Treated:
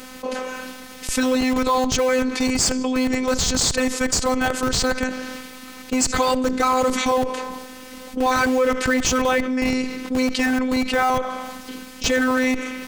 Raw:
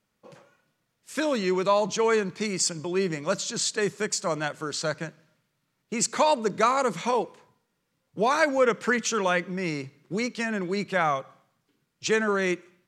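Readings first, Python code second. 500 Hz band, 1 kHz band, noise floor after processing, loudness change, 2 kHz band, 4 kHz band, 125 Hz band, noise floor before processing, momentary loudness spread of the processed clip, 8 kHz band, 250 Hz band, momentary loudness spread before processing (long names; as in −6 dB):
+3.5 dB, +4.5 dB, −39 dBFS, +5.5 dB, +5.5 dB, +7.5 dB, +2.0 dB, −77 dBFS, 14 LU, +7.0 dB, +9.5 dB, 9 LU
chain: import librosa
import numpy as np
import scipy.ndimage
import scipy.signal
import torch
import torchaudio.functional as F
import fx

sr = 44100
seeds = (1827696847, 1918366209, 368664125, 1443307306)

p1 = fx.robotise(x, sr, hz=256.0)
p2 = fx.schmitt(p1, sr, flips_db=-31.0)
p3 = p1 + (p2 * librosa.db_to_amplitude(-4.0))
y = fx.env_flatten(p3, sr, amount_pct=70)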